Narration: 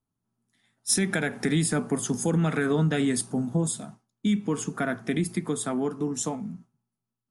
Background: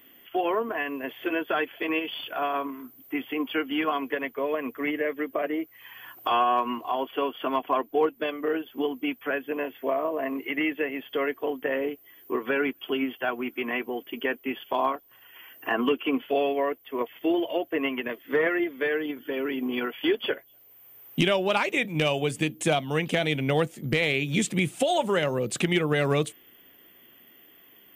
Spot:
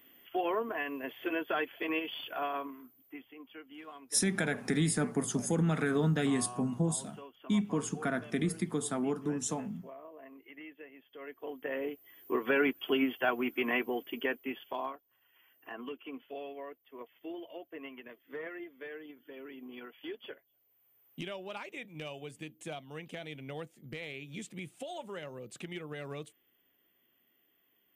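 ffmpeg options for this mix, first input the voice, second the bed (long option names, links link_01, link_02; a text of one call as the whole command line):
ffmpeg -i stem1.wav -i stem2.wav -filter_complex "[0:a]adelay=3250,volume=-5dB[link_01];[1:a]volume=14.5dB,afade=type=out:start_time=2.32:duration=0.99:silence=0.158489,afade=type=in:start_time=11.17:duration=1.49:silence=0.0944061,afade=type=out:start_time=13.78:duration=1.26:silence=0.149624[link_02];[link_01][link_02]amix=inputs=2:normalize=0" out.wav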